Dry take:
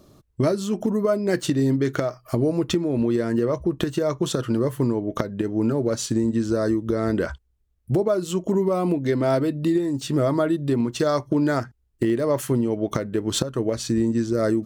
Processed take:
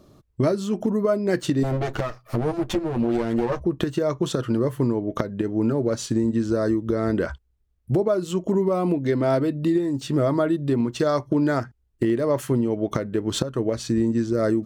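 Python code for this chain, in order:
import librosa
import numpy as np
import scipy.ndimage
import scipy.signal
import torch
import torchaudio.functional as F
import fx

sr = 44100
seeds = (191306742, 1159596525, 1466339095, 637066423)

y = fx.lower_of_two(x, sr, delay_ms=8.9, at=(1.63, 3.6))
y = fx.high_shelf(y, sr, hz=4900.0, db=-6.0)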